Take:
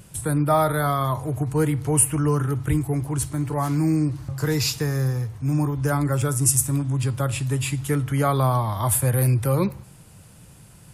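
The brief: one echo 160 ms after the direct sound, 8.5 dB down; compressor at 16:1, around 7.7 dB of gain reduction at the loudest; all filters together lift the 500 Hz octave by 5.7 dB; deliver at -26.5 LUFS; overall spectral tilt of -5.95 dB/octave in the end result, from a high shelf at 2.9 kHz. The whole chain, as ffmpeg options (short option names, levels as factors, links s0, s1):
-af "equalizer=f=500:t=o:g=7,highshelf=f=2900:g=-3,acompressor=threshold=0.112:ratio=16,aecho=1:1:160:0.376,volume=0.794"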